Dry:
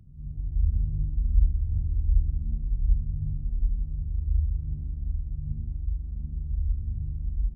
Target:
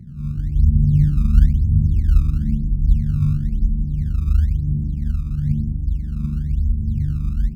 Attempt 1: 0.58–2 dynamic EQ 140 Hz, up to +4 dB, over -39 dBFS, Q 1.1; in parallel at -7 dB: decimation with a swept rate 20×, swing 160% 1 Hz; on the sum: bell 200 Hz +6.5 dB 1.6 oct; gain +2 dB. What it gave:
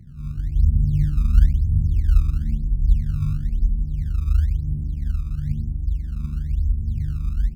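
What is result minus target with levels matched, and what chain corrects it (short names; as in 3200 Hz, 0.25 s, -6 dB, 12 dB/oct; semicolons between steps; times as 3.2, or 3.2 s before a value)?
250 Hz band -5.0 dB
0.58–2 dynamic EQ 140 Hz, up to +4 dB, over -39 dBFS, Q 1.1; in parallel at -7 dB: decimation with a swept rate 20×, swing 160% 1 Hz; on the sum: bell 200 Hz +16.5 dB 1.6 oct; gain +2 dB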